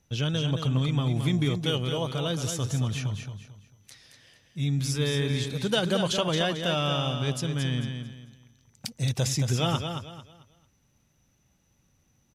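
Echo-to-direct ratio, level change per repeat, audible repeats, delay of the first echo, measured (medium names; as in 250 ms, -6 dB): -6.5 dB, -10.5 dB, 3, 222 ms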